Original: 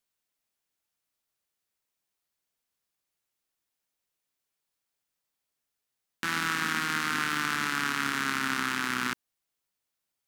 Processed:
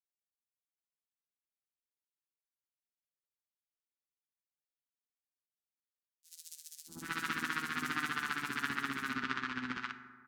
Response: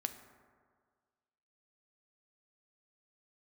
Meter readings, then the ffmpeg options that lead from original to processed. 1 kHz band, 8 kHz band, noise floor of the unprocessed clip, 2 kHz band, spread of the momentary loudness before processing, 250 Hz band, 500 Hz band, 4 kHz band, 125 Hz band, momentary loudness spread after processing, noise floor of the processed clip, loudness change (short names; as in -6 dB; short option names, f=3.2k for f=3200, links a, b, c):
-8.0 dB, -10.5 dB, -85 dBFS, -8.0 dB, 4 LU, -6.5 dB, -8.5 dB, -10.0 dB, -7.5 dB, 14 LU, under -85 dBFS, -8.5 dB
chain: -filter_complex "[0:a]agate=range=-15dB:threshold=-28dB:ratio=16:detection=peak,tremolo=f=15:d=0.87,acrossover=split=670|5500[a][b][c];[a]adelay=640[d];[b]adelay=780[e];[d][e][c]amix=inputs=3:normalize=0[f];[1:a]atrim=start_sample=2205[g];[f][g]afir=irnorm=-1:irlink=0"